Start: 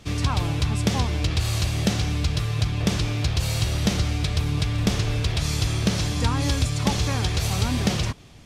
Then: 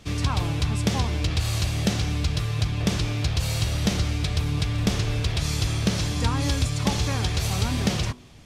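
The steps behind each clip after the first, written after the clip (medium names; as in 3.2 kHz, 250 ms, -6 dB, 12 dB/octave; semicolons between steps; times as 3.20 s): de-hum 122.8 Hz, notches 11; trim -1 dB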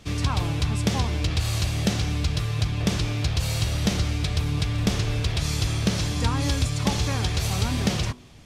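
no audible change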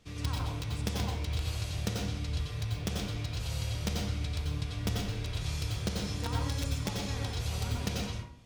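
feedback comb 480 Hz, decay 0.34 s, harmonics all, mix 70%; in parallel at -5.5 dB: bit crusher 4-bit; on the sum: reverberation RT60 0.45 s, pre-delay 85 ms, DRR -0.5 dB; trim -4.5 dB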